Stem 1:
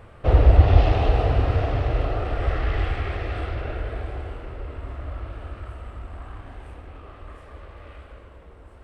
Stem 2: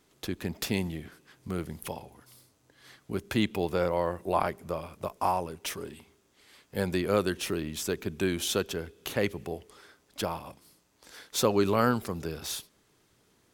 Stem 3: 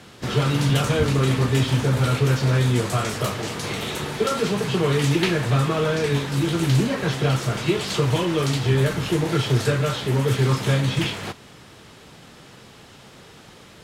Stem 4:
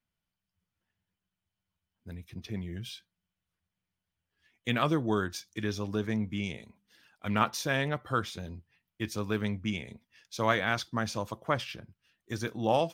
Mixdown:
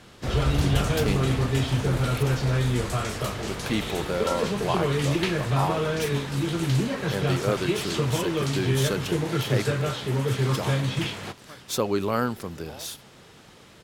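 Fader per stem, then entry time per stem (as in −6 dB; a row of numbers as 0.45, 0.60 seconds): −12.5, −0.5, −4.5, −19.0 decibels; 0.00, 0.35, 0.00, 0.00 seconds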